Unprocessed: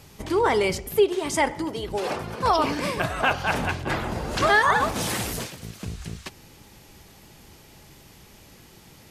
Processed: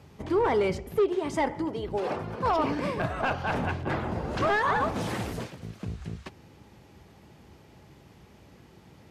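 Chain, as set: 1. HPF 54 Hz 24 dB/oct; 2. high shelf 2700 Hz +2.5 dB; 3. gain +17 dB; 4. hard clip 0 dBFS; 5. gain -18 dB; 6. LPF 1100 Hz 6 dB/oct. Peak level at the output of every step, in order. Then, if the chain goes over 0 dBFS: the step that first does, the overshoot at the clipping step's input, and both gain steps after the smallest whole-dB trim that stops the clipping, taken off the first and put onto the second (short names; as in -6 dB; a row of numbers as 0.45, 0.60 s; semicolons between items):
-8.0, -7.5, +9.5, 0.0, -18.0, -18.0 dBFS; step 3, 9.5 dB; step 3 +7 dB, step 5 -8 dB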